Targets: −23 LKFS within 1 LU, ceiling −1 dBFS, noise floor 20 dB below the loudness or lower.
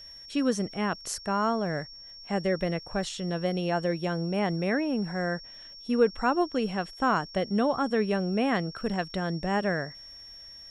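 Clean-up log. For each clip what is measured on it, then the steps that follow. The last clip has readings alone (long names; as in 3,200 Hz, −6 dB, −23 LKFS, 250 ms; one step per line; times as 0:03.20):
crackle rate 50 per second; interfering tone 5,500 Hz; level of the tone −44 dBFS; integrated loudness −28.5 LKFS; sample peak −10.5 dBFS; target loudness −23.0 LKFS
→ click removal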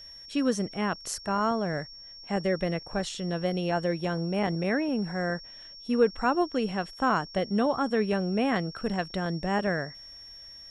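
crackle rate 0.37 per second; interfering tone 5,500 Hz; level of the tone −44 dBFS
→ notch filter 5,500 Hz, Q 30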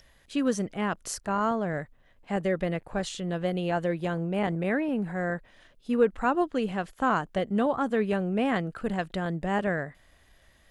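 interfering tone none found; integrated loudness −29.0 LKFS; sample peak −11.0 dBFS; target loudness −23.0 LKFS
→ level +6 dB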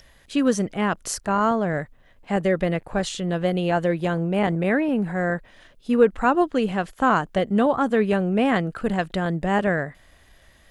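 integrated loudness −23.0 LKFS; sample peak −5.0 dBFS; background noise floor −55 dBFS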